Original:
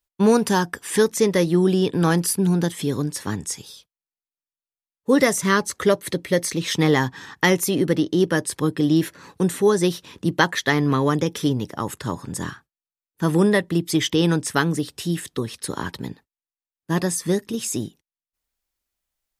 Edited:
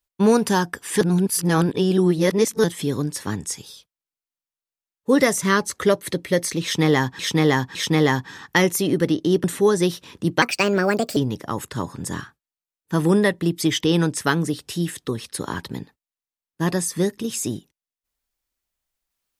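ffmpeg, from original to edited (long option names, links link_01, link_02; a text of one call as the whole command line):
ffmpeg -i in.wav -filter_complex "[0:a]asplit=8[link_01][link_02][link_03][link_04][link_05][link_06][link_07][link_08];[link_01]atrim=end=1.012[link_09];[link_02]atrim=start=1.008:end=2.642,asetpts=PTS-STARTPTS,areverse[link_10];[link_03]atrim=start=2.638:end=7.192[link_11];[link_04]atrim=start=6.628:end=7.192[link_12];[link_05]atrim=start=6.628:end=8.322[link_13];[link_06]atrim=start=9.448:end=10.434[link_14];[link_07]atrim=start=10.43:end=11.46,asetpts=PTS-STARTPTS,asetrate=60858,aresample=44100,atrim=end_sample=32915,asetpts=PTS-STARTPTS[link_15];[link_08]atrim=start=11.456[link_16];[link_09][link_10]acrossfade=duration=0.004:curve1=hsin:curve2=hsin[link_17];[link_17][link_11]acrossfade=duration=0.004:curve1=hsin:curve2=hsin[link_18];[link_18][link_12]acrossfade=duration=0.004:curve1=hsin:curve2=hsin[link_19];[link_19][link_13]acrossfade=duration=0.004:curve1=hsin:curve2=hsin[link_20];[link_20][link_14]acrossfade=duration=0.004:curve1=hsin:curve2=hsin[link_21];[link_21][link_15]acrossfade=duration=0.004:curve1=hsin:curve2=hsin[link_22];[link_22][link_16]acrossfade=duration=0.004:curve1=hsin:curve2=hsin" out.wav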